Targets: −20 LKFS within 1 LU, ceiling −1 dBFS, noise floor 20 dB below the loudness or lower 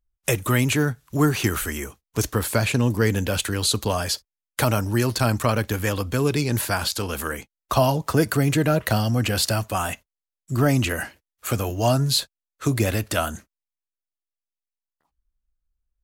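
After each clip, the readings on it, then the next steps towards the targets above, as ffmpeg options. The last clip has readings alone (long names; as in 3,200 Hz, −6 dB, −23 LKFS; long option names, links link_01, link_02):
integrated loudness −23.0 LKFS; sample peak −6.0 dBFS; target loudness −20.0 LKFS
→ -af "volume=3dB"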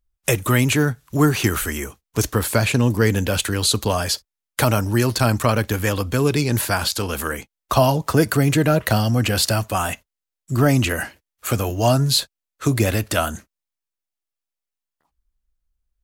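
integrated loudness −20.0 LKFS; sample peak −3.0 dBFS; background noise floor −86 dBFS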